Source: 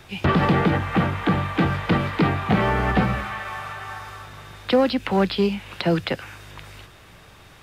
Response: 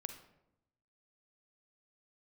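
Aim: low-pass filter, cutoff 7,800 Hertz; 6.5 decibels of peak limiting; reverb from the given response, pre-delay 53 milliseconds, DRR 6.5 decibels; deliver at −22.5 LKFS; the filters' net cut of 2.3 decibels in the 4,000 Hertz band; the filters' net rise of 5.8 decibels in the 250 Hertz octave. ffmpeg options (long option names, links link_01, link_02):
-filter_complex "[0:a]lowpass=7800,equalizer=frequency=250:width_type=o:gain=8,equalizer=frequency=4000:width_type=o:gain=-3,alimiter=limit=-9.5dB:level=0:latency=1,asplit=2[link_01][link_02];[1:a]atrim=start_sample=2205,adelay=53[link_03];[link_02][link_03]afir=irnorm=-1:irlink=0,volume=-4dB[link_04];[link_01][link_04]amix=inputs=2:normalize=0,volume=-2dB"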